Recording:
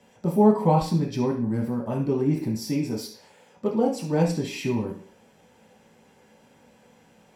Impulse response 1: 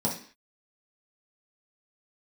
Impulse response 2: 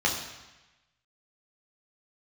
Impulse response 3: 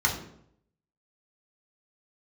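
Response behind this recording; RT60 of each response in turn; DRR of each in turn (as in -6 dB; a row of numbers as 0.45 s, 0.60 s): 1; 0.45 s, 1.1 s, 0.70 s; -4.5 dB, -2.0 dB, -2.0 dB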